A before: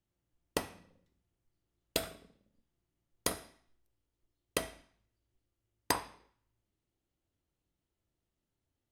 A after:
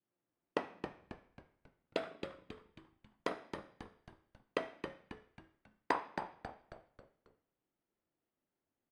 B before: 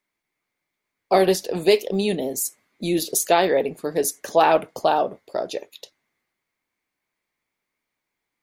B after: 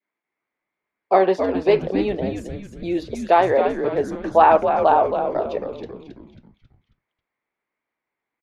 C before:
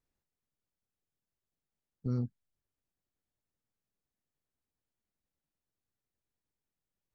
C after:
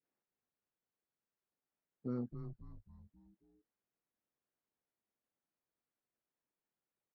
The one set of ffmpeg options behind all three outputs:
-filter_complex "[0:a]adynamicequalizer=threshold=0.0282:dfrequency=970:dqfactor=1.3:tfrequency=970:tqfactor=1.3:attack=5:release=100:ratio=0.375:range=3:mode=boostabove:tftype=bell,highpass=250,lowpass=2100,asplit=6[link_01][link_02][link_03][link_04][link_05][link_06];[link_02]adelay=271,afreqshift=-110,volume=-7dB[link_07];[link_03]adelay=542,afreqshift=-220,volume=-13.7dB[link_08];[link_04]adelay=813,afreqshift=-330,volume=-20.5dB[link_09];[link_05]adelay=1084,afreqshift=-440,volume=-27.2dB[link_10];[link_06]adelay=1355,afreqshift=-550,volume=-34dB[link_11];[link_01][link_07][link_08][link_09][link_10][link_11]amix=inputs=6:normalize=0"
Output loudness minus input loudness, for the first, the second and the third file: −5.5, +2.5, −7.5 LU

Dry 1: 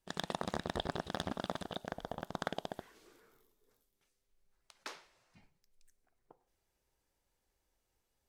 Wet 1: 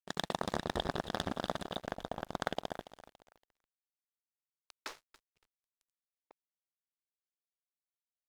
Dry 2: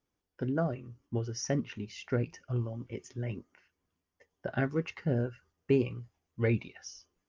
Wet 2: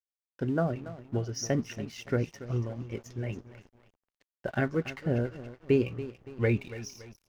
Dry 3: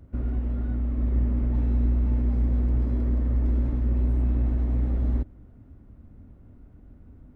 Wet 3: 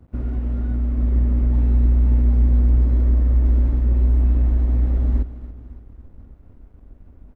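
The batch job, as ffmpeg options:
-af "aecho=1:1:283|566|849|1132:0.2|0.0938|0.0441|0.0207,aeval=exprs='sgn(val(0))*max(abs(val(0))-0.00178,0)':channel_layout=same,asubboost=boost=2.5:cutoff=67,volume=3dB"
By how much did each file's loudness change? +2.5, +2.0, +6.5 LU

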